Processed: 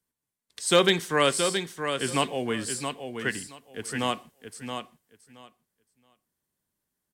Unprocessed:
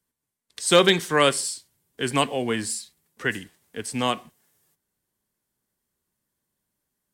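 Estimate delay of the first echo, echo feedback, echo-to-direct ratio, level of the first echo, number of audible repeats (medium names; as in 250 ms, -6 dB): 673 ms, 17%, -7.0 dB, -7.0 dB, 2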